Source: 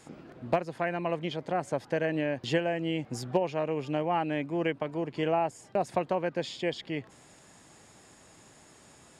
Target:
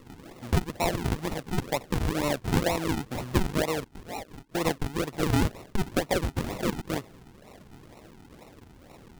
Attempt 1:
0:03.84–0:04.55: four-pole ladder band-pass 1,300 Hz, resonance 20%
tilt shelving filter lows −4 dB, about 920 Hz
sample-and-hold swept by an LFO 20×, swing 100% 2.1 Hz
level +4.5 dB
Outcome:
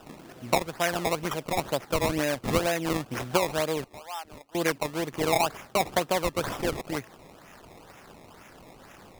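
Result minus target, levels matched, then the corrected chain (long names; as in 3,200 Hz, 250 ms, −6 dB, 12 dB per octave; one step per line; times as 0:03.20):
sample-and-hold swept by an LFO: distortion −13 dB
0:03.84–0:04.55: four-pole ladder band-pass 1,300 Hz, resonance 20%
tilt shelving filter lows −4 dB, about 920 Hz
sample-and-hold swept by an LFO 54×, swing 100% 2.1 Hz
level +4.5 dB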